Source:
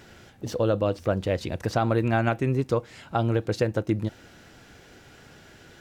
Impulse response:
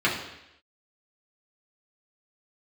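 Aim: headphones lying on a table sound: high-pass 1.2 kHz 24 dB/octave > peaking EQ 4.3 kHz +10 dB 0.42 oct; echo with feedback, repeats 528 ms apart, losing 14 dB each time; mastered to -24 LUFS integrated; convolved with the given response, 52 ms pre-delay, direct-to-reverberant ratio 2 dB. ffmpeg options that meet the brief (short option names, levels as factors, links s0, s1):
-filter_complex "[0:a]aecho=1:1:528|1056:0.2|0.0399,asplit=2[s0][s1];[1:a]atrim=start_sample=2205,adelay=52[s2];[s1][s2]afir=irnorm=-1:irlink=0,volume=0.133[s3];[s0][s3]amix=inputs=2:normalize=0,highpass=f=1200:w=0.5412,highpass=f=1200:w=1.3066,equalizer=f=4300:t=o:w=0.42:g=10,volume=3.35"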